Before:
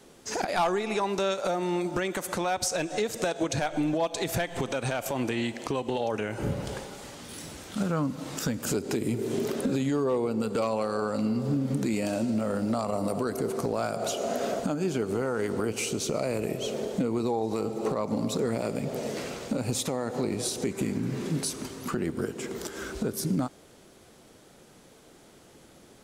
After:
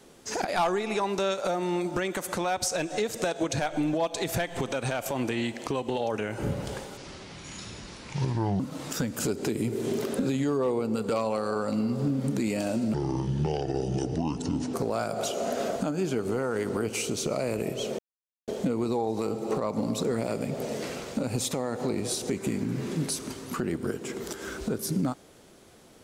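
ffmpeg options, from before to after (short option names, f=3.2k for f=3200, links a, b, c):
-filter_complex "[0:a]asplit=6[a][b][c][d][e][f];[a]atrim=end=6.974[g];[b]atrim=start=6.97:end=8.06,asetpts=PTS-STARTPTS,asetrate=29547,aresample=44100[h];[c]atrim=start=8.056:end=12.404[i];[d]atrim=start=12.4:end=13.57,asetpts=PTS-STARTPTS,asetrate=28665,aresample=44100[j];[e]atrim=start=13.566:end=16.82,asetpts=PTS-STARTPTS,afade=t=out:st=3.25:d=0.004:c=hsin,apad=pad_dur=0.49[k];[f]atrim=start=16.82,asetpts=PTS-STARTPTS,afade=t=in:d=0.004:c=hsin[l];[g][h]acrossfade=d=0.004:c1=hsin:c2=hsin[m];[m][i]acrossfade=d=0.004:c1=hsin:c2=hsin[n];[n][j]acrossfade=d=0.004:c1=hsin:c2=hsin[o];[k][l]concat=n=2:v=0:a=1[p];[o][p]acrossfade=d=0.004:c1=hsin:c2=hsin"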